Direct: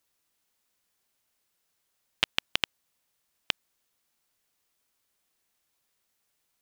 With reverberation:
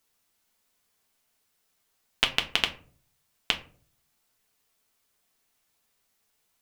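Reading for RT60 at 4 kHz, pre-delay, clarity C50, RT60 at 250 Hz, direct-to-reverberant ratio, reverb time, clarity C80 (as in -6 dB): 0.25 s, 5 ms, 14.5 dB, 0.60 s, 3.0 dB, 0.45 s, 18.5 dB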